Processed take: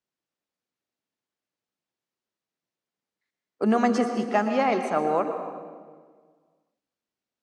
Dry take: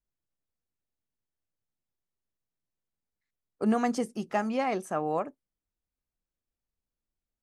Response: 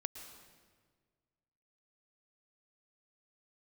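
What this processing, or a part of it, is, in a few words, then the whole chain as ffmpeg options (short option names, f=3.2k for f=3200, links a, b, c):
supermarket ceiling speaker: -filter_complex "[0:a]highpass=210,lowpass=6k[a];[1:a]atrim=start_sample=2205[b];[a][b]afir=irnorm=-1:irlink=0,volume=8dB"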